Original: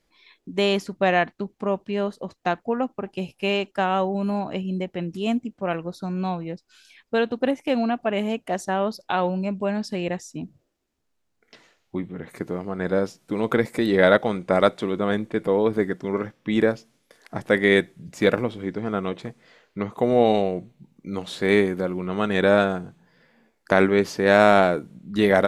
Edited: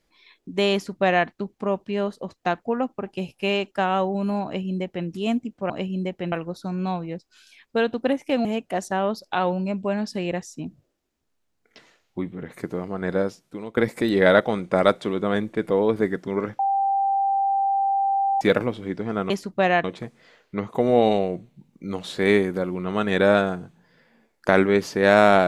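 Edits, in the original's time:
0:00.73–0:01.27: duplicate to 0:19.07
0:04.45–0:05.07: duplicate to 0:05.70
0:07.83–0:08.22: remove
0:12.89–0:13.54: fade out, to −17.5 dB
0:16.36–0:18.18: beep over 787 Hz −18.5 dBFS

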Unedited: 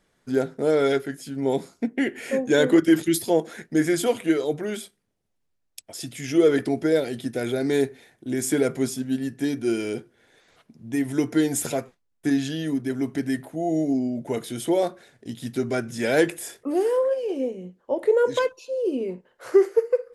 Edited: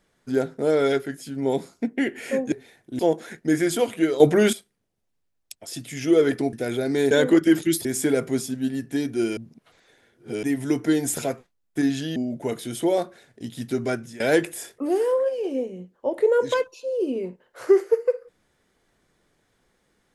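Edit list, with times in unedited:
0:02.52–0:03.26: swap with 0:07.86–0:08.33
0:04.47–0:04.80: clip gain +11.5 dB
0:06.80–0:07.28: remove
0:09.85–0:10.91: reverse
0:12.64–0:14.01: remove
0:15.78–0:16.05: fade out, to −20 dB

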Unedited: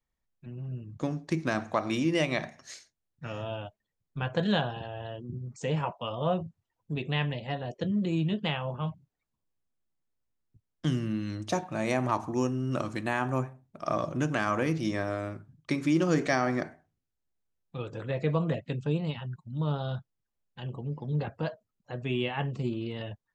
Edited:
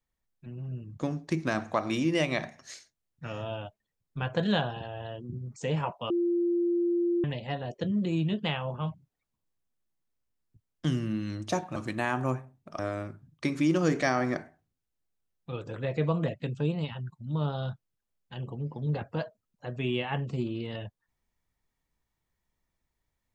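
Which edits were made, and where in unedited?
0:06.10–0:07.24: beep over 346 Hz −23.5 dBFS
0:11.76–0:12.84: remove
0:13.87–0:15.05: remove

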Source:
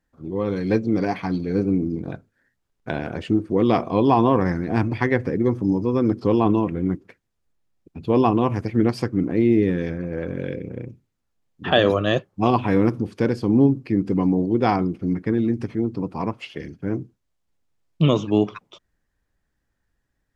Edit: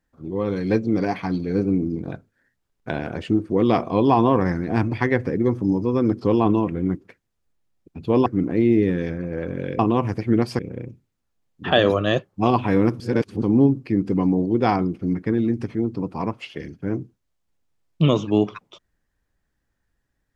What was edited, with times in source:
0:08.26–0:09.06: move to 0:10.59
0:13.00–0:13.42: reverse

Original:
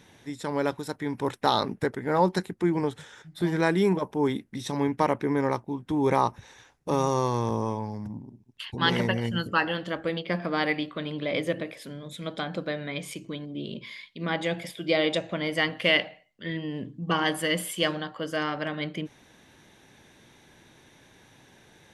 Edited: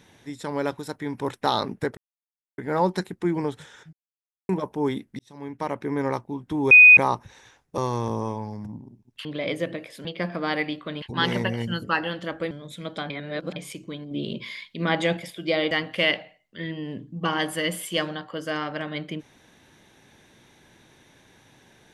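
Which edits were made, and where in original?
0:01.97: splice in silence 0.61 s
0:03.32–0:03.88: silence
0:04.58–0:05.45: fade in
0:06.10: insert tone 2,490 Hz −6.5 dBFS 0.26 s
0:06.91–0:07.19: remove
0:08.66–0:10.15: swap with 0:11.12–0:11.92
0:12.51–0:12.97: reverse
0:13.52–0:14.58: clip gain +5 dB
0:15.12–0:15.57: remove

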